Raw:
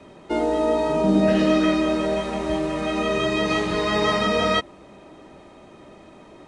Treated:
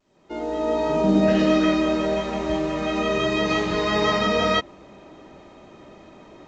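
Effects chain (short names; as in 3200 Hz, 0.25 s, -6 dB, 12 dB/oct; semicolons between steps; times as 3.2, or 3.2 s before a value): opening faded in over 0.92 s; A-law 128 kbps 16000 Hz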